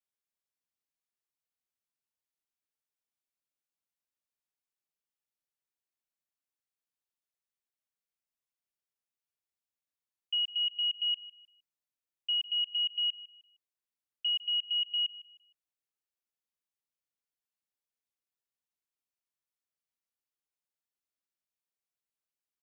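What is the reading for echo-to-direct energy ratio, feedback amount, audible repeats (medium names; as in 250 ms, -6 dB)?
-17.0 dB, 30%, 2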